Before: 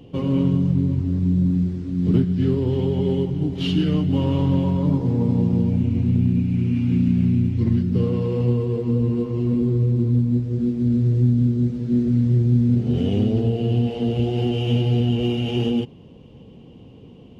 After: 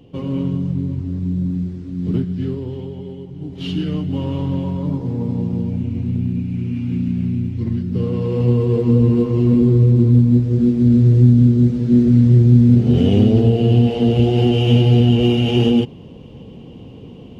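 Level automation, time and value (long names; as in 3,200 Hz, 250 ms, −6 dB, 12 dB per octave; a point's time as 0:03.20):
0:02.36 −2 dB
0:03.19 −12 dB
0:03.70 −2 dB
0:07.80 −2 dB
0:08.77 +7 dB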